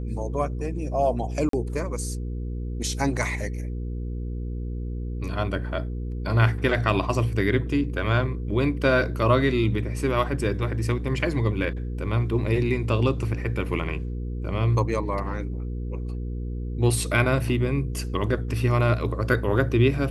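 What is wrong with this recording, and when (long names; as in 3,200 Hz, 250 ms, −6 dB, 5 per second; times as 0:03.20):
mains hum 60 Hz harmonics 8 −30 dBFS
0:01.49–0:01.53: drop-out 43 ms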